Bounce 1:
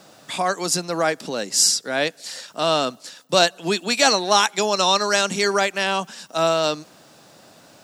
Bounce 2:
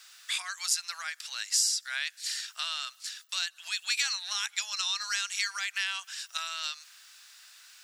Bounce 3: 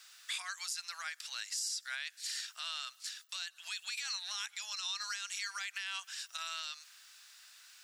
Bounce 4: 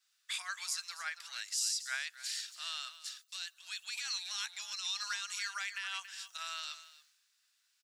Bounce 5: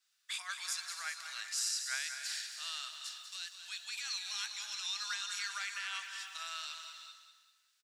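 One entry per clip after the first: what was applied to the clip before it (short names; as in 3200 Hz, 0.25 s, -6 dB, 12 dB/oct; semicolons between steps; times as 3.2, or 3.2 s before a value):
compressor 12:1, threshold -23 dBFS, peak gain reduction 13 dB; inverse Chebyshev high-pass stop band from 260 Hz, stop band 80 dB
limiter -24 dBFS, peak gain reduction 11 dB; gain -4 dB
echo 0.281 s -9.5 dB; three-band expander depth 100%
on a send: feedback echo 0.195 s, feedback 37%, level -9 dB; on the sum: non-linear reverb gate 0.43 s rising, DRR 8 dB; gain -1.5 dB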